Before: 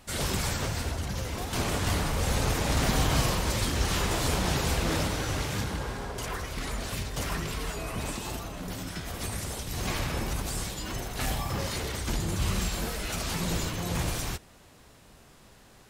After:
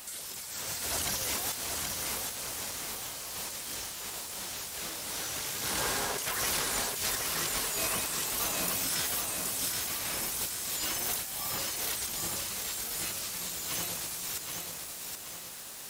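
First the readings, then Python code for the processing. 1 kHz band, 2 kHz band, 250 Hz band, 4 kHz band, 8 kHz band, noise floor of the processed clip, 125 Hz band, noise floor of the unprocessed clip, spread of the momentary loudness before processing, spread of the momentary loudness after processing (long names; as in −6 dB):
−5.0 dB, −3.0 dB, −12.0 dB, 0.0 dB, +4.0 dB, −42 dBFS, −17.5 dB, −55 dBFS, 8 LU, 8 LU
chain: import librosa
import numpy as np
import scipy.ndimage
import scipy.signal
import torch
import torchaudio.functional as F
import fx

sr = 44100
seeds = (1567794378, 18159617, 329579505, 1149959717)

y = fx.riaa(x, sr, side='recording')
y = fx.over_compress(y, sr, threshold_db=-35.0, ratio=-1.0)
y = fx.echo_crushed(y, sr, ms=775, feedback_pct=55, bits=8, wet_db=-3.5)
y = y * 10.0 ** (-2.0 / 20.0)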